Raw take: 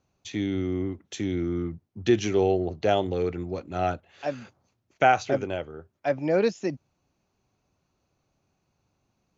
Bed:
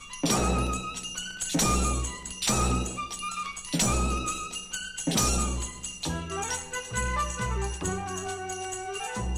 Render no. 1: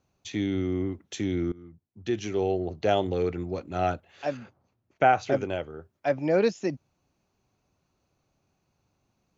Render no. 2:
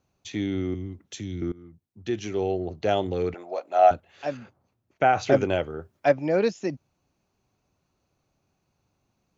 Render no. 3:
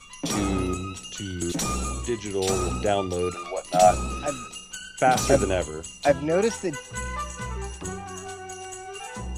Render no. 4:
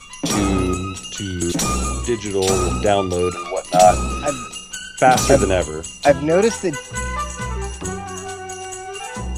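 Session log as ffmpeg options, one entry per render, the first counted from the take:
-filter_complex "[0:a]asettb=1/sr,asplit=3[a][b][c];[a]atrim=end=4.374[d];[b]atrim=start=4.37:end=5.23,asetpts=PTS-STARTPTS,afade=t=in:d=0.004:c=qsin,afade=t=out:st=0.856:d=0.004:c=qsin,lowpass=f=1.8k:p=1[e];[c]atrim=start=5.226[f];[d][e]acrossfade=d=0.004:c1=hsin:c2=qsin[g];[g][f]acrossfade=d=0.004:c1=qsin:c2=hsin,asplit=2[h][i];[h]atrim=end=1.52,asetpts=PTS-STARTPTS,afade=t=out:st=1.516:d=0.004:c=hsin:silence=0.0749894[j];[i]atrim=start=1.52,asetpts=PTS-STARTPTS,afade=t=in:d=1.56:silence=0.0749894[k];[j][k]concat=n=2:v=0:a=1"
-filter_complex "[0:a]asettb=1/sr,asplit=3[a][b][c];[a]atrim=end=0.744[d];[b]atrim=start=0.74:end=1.42,asetpts=PTS-STARTPTS,afade=t=in:d=0.004:c=qsin,afade=t=out:st=0.676:d=0.004:c=qsin,acrossover=split=210|3000[e][f][g];[f]acompressor=threshold=-48dB:ratio=2.5:attack=3.2:release=140:knee=2.83:detection=peak[h];[e][h][g]amix=inputs=3:normalize=0[i];[c]atrim=start=1.416[j];[d][i]acrossfade=d=0.004:c1=hsin:c2=qsin[k];[k][j]acrossfade=d=0.004:c1=qsin:c2=hsin,asettb=1/sr,asplit=3[l][m][n];[l]atrim=end=3.344[o];[m]atrim=start=3.34:end=3.91,asetpts=PTS-STARTPTS,afade=t=in:d=0.004:c=qsin,afade=t=out:st=0.566:d=0.004:c=qsin,highpass=f=660:t=q:w=4.1[p];[n]atrim=start=3.906[q];[o][p]acrossfade=d=0.004:c1=hsin:c2=qsin[r];[r][q]acrossfade=d=0.004:c1=qsin:c2=hsin,asplit=3[s][t][u];[s]afade=t=out:st=5.15:d=0.02[v];[t]acontrast=53,afade=t=in:st=5.15:d=0.02,afade=t=out:st=6.11:d=0.02[w];[u]afade=t=in:st=6.11:d=0.02[x];[v][w][x]amix=inputs=3:normalize=0"
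-filter_complex "[1:a]volume=-3dB[a];[0:a][a]amix=inputs=2:normalize=0"
-af "volume=7dB,alimiter=limit=-1dB:level=0:latency=1"

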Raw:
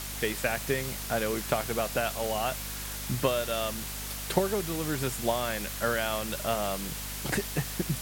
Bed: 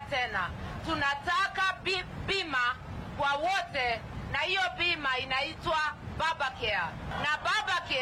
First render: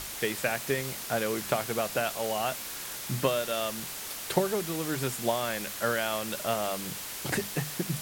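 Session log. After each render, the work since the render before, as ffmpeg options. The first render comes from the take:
-af "bandreject=f=50:t=h:w=6,bandreject=f=100:t=h:w=6,bandreject=f=150:t=h:w=6,bandreject=f=200:t=h:w=6,bandreject=f=250:t=h:w=6"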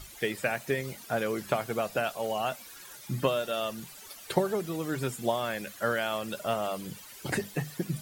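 -af "afftdn=nr=14:nf=-39"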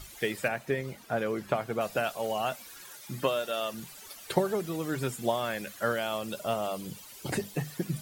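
-filter_complex "[0:a]asettb=1/sr,asplit=3[a][b][c];[a]atrim=end=0.484[d];[b]atrim=start=0.48:end=1.81,asetpts=PTS-STARTPTS,afade=t=in:d=0.004:c=qsin,afade=t=out:st=1.326:d=0.004:c=qsin,highshelf=f=3.5k:g=-9.5[e];[c]atrim=start=1.806[f];[d][e]acrossfade=d=0.004:c1=hsin:c2=qsin[g];[g][f]acrossfade=d=0.004:c1=qsin:c2=hsin,asettb=1/sr,asplit=3[h][i][j];[h]atrim=end=2.904[k];[i]atrim=start=2.9:end=3.74,asetpts=PTS-STARTPTS,afade=t=in:d=0.004:c=qsin,afade=t=out:st=0.836:d=0.004:c=qsin,lowshelf=f=160:g=-11[l];[j]atrim=start=3.736[m];[k][l]acrossfade=d=0.004:c1=hsin:c2=qsin[n];[n][m]acrossfade=d=0.004:c1=qsin:c2=hsin,asettb=1/sr,asplit=3[o][p][q];[o]atrim=end=5.924[r];[p]atrim=start=5.92:end=7.61,asetpts=PTS-STARTPTS,afade=t=in:d=0.004:c=qsin,afade=t=out:st=1.686:d=0.004:c=qsin,equalizer=f=1.7k:t=o:w=0.77:g=-5.5[s];[q]atrim=start=7.606[t];[r][s]acrossfade=d=0.004:c1=hsin:c2=qsin[u];[u][t]acrossfade=d=0.004:c1=qsin:c2=hsin"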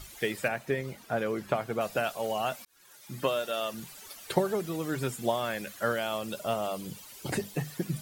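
-filter_complex "[0:a]asplit=2[a][b];[a]atrim=end=2.65,asetpts=PTS-STARTPTS,afade=t=out:st=2.646:d=0.004:c=hsin[c];[b]atrim=start=2.65,asetpts=PTS-STARTPTS,afade=t=in:d=0.66[d];[c][d]concat=n=2:v=0:a=1"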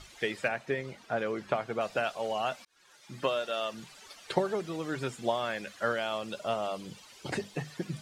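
-af "lowpass=5.8k,lowshelf=f=280:g=-6"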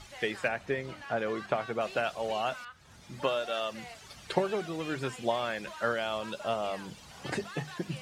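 -filter_complex "[1:a]volume=-17.5dB[a];[0:a][a]amix=inputs=2:normalize=0"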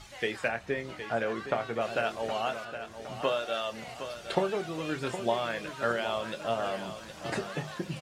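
-filter_complex "[0:a]asplit=2[a][b];[b]adelay=26,volume=-10.5dB[c];[a][c]amix=inputs=2:normalize=0,aecho=1:1:765|1530|2295|3060|3825:0.299|0.146|0.0717|0.0351|0.0172"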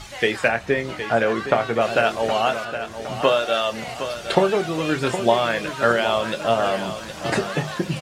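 -af "volume=11dB,alimiter=limit=-1dB:level=0:latency=1"

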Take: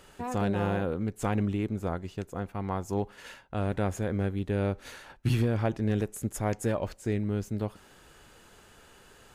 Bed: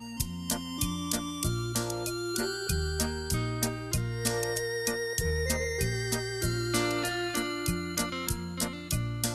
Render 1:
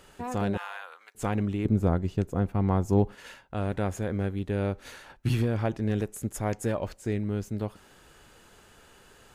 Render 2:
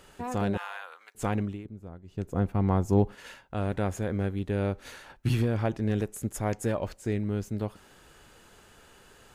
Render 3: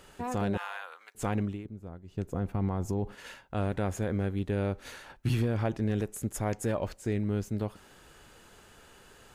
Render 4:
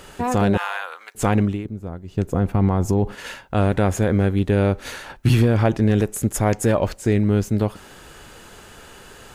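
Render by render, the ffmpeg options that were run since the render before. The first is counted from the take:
-filter_complex "[0:a]asettb=1/sr,asplit=3[a][b][c];[a]atrim=end=0.574[d];[b]atrim=start=0.57:end=1.15,asetpts=PTS-STARTPTS,afade=t=in:d=0.004:c=qsin,afade=t=out:st=0.576:d=0.004:c=qsin,highpass=f=970:w=0.5412,highpass=f=970:w=1.3066[e];[c]atrim=start=1.146[f];[d][e]acrossfade=d=0.004:c1=hsin:c2=qsin[g];[g][f]acrossfade=d=0.004:c1=qsin:c2=hsin,asettb=1/sr,asplit=3[h][i][j];[h]atrim=end=1.654[k];[i]atrim=start=1.65:end=3.15,asetpts=PTS-STARTPTS,afade=t=in:d=0.004:c=qsin,afade=t=out:st=1.496:d=0.004:c=qsin,lowshelf=f=480:g=10.5[l];[j]atrim=start=3.146[m];[k][l]acrossfade=d=0.004:c1=hsin:c2=qsin[n];[n][m]acrossfade=d=0.004:c1=qsin:c2=hsin"
-filter_complex "[0:a]asplit=3[a][b][c];[a]atrim=end=1.67,asetpts=PTS-STARTPTS,afade=t=out:st=1.34:d=0.33:silence=0.105925[d];[b]atrim=start=1.67:end=2.06,asetpts=PTS-STARTPTS,volume=-19.5dB[e];[c]atrim=start=2.06,asetpts=PTS-STARTPTS,afade=t=in:d=0.33:silence=0.105925[f];[d][e][f]concat=n=3:v=0:a=1"
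-af "alimiter=limit=-20dB:level=0:latency=1:release=53"
-af "volume=12dB"

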